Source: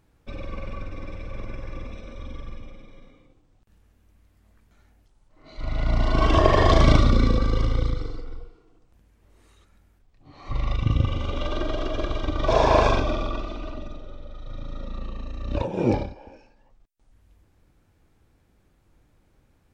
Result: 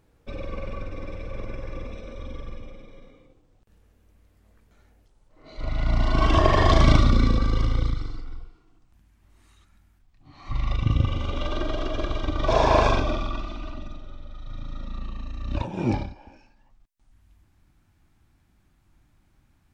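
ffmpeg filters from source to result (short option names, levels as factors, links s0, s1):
-af "asetnsamples=n=441:p=0,asendcmd='5.7 equalizer g -6;7.9 equalizer g -14;10.71 equalizer g -3;13.18 equalizer g -13',equalizer=f=480:t=o:w=0.61:g=5"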